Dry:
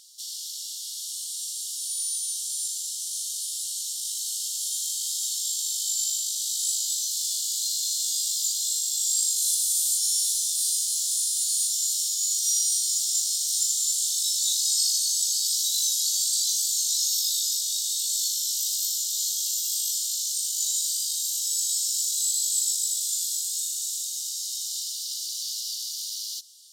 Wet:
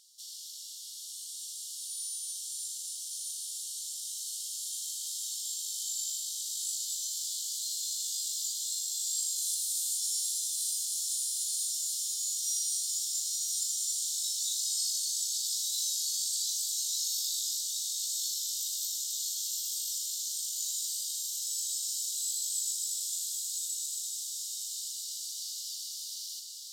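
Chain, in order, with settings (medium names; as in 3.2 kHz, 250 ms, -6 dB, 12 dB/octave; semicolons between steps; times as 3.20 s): echo that smears into a reverb 1100 ms, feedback 42%, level -5 dB; trim -9 dB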